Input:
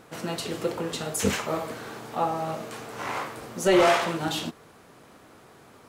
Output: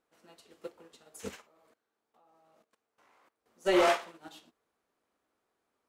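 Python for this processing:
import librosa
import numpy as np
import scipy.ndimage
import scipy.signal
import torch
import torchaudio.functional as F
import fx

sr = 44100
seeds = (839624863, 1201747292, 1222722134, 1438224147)

y = fx.peak_eq(x, sr, hz=130.0, db=-14.5, octaves=0.93)
y = fx.level_steps(y, sr, step_db=19, at=(1.42, 3.46))
y = fx.upward_expand(y, sr, threshold_db=-34.0, expansion=2.5)
y = y * 10.0 ** (-3.5 / 20.0)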